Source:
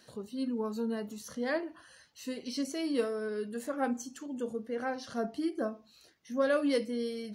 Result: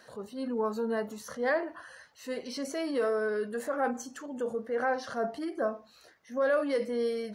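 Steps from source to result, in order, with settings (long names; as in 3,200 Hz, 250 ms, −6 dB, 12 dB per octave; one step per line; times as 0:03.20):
brickwall limiter −27 dBFS, peak gain reduction 8 dB
transient designer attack −5 dB, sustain +1 dB
flat-topped bell 950 Hz +9 dB 2.4 octaves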